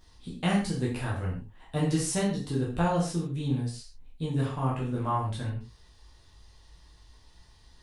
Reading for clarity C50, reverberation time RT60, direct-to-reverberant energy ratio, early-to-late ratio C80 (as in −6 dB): 5.0 dB, non-exponential decay, −5.5 dB, 9.0 dB